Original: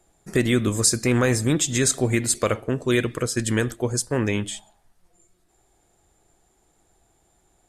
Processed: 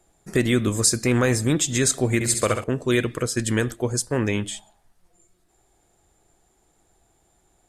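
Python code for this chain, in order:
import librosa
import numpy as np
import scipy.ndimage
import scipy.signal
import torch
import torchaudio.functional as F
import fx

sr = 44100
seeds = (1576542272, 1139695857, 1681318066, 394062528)

y = fx.room_flutter(x, sr, wall_m=11.5, rt60_s=0.62, at=(2.14, 2.64))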